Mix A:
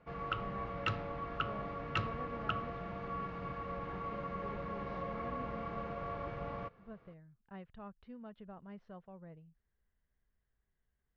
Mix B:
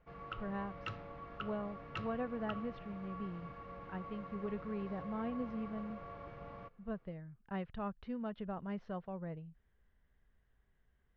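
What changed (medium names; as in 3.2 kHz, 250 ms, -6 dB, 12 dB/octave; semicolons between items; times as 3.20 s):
speech +9.0 dB; background -8.0 dB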